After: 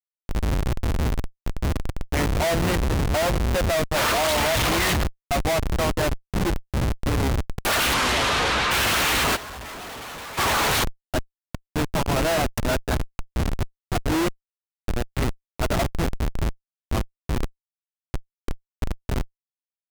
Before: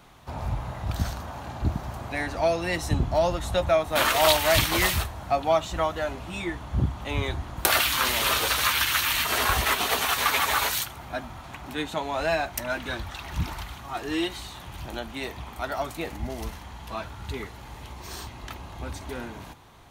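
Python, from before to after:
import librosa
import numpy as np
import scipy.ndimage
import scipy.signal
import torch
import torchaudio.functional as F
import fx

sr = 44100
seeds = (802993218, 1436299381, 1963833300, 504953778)

y = fx.schmitt(x, sr, flips_db=-27.0)
y = fx.lowpass(y, sr, hz=fx.line((7.93, 9600.0), (8.7, 3900.0)), slope=12, at=(7.93, 8.7), fade=0.02)
y = fx.fold_sine(y, sr, drive_db=6, ceiling_db=-16.0)
y = fx.over_compress(y, sr, threshold_db=-27.0, ratio=-0.5, at=(9.35, 10.37), fade=0.02)
y = F.gain(torch.from_numpy(y), -2.5).numpy()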